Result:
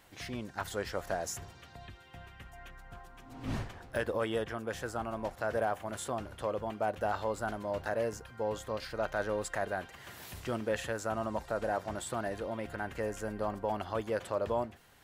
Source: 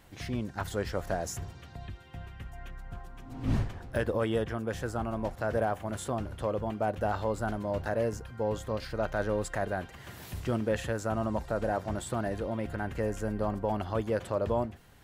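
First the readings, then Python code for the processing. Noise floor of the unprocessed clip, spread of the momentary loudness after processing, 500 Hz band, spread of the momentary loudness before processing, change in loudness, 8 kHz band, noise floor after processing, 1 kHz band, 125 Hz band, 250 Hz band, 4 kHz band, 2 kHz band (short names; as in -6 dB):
-50 dBFS, 17 LU, -2.5 dB, 14 LU, -3.5 dB, 0.0 dB, -54 dBFS, -1.5 dB, -9.0 dB, -6.0 dB, 0.0 dB, -0.5 dB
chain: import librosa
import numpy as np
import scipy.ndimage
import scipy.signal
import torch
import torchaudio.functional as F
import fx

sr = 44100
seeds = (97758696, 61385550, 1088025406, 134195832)

y = fx.low_shelf(x, sr, hz=320.0, db=-10.0)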